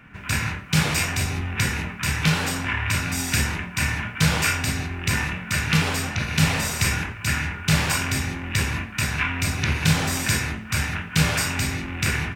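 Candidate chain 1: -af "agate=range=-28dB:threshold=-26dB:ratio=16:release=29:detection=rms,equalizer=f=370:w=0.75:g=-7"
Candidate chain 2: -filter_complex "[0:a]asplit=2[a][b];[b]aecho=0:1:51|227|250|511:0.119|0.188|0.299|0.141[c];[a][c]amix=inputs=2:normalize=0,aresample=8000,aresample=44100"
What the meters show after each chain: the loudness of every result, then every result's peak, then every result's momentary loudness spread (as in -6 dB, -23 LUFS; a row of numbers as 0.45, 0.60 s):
-25.0, -23.5 LUFS; -5.5, -5.5 dBFS; 6, 5 LU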